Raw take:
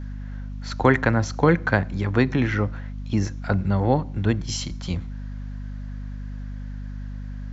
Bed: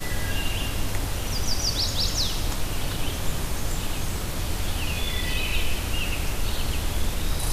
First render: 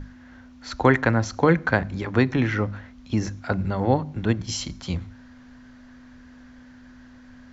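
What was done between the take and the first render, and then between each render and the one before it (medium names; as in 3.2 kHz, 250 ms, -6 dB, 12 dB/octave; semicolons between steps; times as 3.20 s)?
hum notches 50/100/150/200 Hz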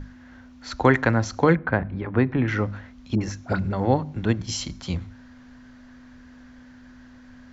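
1.55–2.48 s: distance through air 460 m; 3.15–3.73 s: phase dispersion highs, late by 61 ms, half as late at 940 Hz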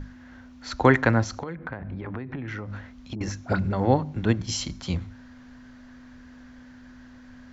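1.23–3.21 s: compression 20:1, threshold -29 dBFS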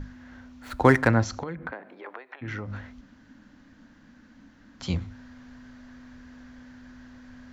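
0.62–1.08 s: median filter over 9 samples; 1.70–2.41 s: high-pass 260 Hz -> 670 Hz 24 dB/octave; 3.01–4.80 s: room tone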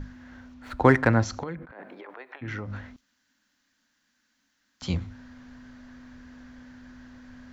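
0.54–1.11 s: treble shelf 6.2 kHz -12 dB; 1.61–2.38 s: compressor with a negative ratio -44 dBFS; 2.96–4.82 s: pre-emphasis filter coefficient 0.97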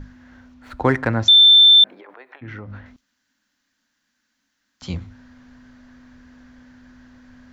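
1.28–1.84 s: bleep 3.55 kHz -6.5 dBFS; 2.40–2.86 s: distance through air 150 m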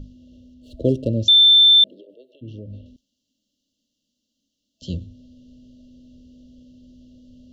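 treble shelf 5.5 kHz -6.5 dB; FFT band-reject 650–2700 Hz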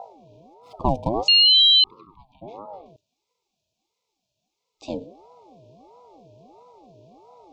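ring modulator with a swept carrier 550 Hz, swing 35%, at 1.5 Hz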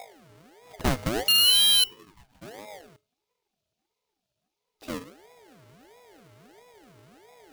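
square wave that keeps the level; feedback comb 420 Hz, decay 0.31 s, harmonics odd, mix 60%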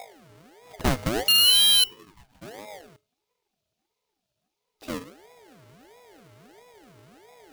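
trim +1.5 dB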